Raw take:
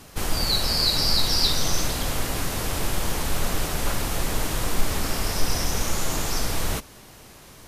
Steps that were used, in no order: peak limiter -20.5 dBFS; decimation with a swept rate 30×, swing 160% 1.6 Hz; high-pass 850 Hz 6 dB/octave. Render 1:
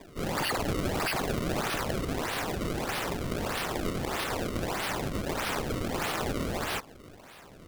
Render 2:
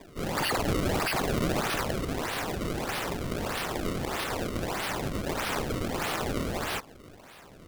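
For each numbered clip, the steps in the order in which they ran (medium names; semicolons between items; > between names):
high-pass > peak limiter > decimation with a swept rate; high-pass > decimation with a swept rate > peak limiter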